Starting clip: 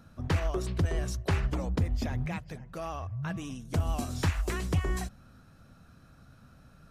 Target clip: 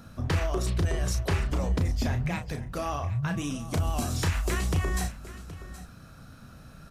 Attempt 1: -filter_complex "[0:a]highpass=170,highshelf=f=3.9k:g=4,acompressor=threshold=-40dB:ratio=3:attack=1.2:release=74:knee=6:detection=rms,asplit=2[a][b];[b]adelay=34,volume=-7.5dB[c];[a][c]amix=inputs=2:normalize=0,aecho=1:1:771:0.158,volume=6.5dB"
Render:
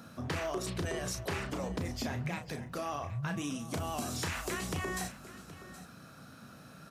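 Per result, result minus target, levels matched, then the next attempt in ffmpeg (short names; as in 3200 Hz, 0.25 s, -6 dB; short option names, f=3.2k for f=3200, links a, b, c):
compressor: peak gain reduction +6 dB; 125 Hz band -3.5 dB
-filter_complex "[0:a]highpass=170,highshelf=f=3.9k:g=4,acompressor=threshold=-31dB:ratio=3:attack=1.2:release=74:knee=6:detection=rms,asplit=2[a][b];[b]adelay=34,volume=-7.5dB[c];[a][c]amix=inputs=2:normalize=0,aecho=1:1:771:0.158,volume=6.5dB"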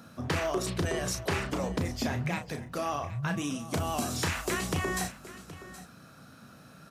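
125 Hz band -4.0 dB
-filter_complex "[0:a]highshelf=f=3.9k:g=4,acompressor=threshold=-31dB:ratio=3:attack=1.2:release=74:knee=6:detection=rms,asplit=2[a][b];[b]adelay=34,volume=-7.5dB[c];[a][c]amix=inputs=2:normalize=0,aecho=1:1:771:0.158,volume=6.5dB"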